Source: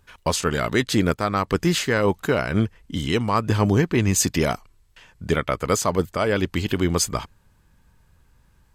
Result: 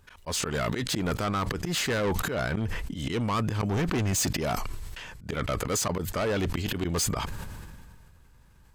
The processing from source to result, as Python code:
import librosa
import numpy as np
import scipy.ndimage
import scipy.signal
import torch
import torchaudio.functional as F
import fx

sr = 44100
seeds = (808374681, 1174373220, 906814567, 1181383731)

y = fx.auto_swell(x, sr, attack_ms=125.0)
y = 10.0 ** (-23.5 / 20.0) * np.tanh(y / 10.0 ** (-23.5 / 20.0))
y = fx.sustainer(y, sr, db_per_s=26.0)